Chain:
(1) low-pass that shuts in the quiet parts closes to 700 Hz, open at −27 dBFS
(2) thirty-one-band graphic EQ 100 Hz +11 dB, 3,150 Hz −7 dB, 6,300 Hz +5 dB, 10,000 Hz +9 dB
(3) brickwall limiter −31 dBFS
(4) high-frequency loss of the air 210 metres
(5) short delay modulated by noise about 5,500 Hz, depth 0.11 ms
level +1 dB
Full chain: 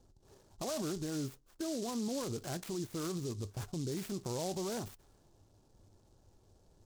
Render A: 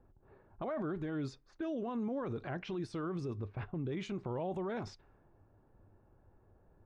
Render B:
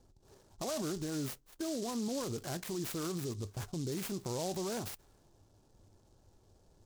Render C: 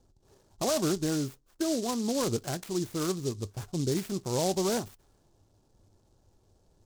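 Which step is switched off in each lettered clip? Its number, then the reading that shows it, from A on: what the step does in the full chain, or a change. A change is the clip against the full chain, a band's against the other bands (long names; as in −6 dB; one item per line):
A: 5, 8 kHz band −20.0 dB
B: 4, 2 kHz band +1.5 dB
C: 3, average gain reduction 4.5 dB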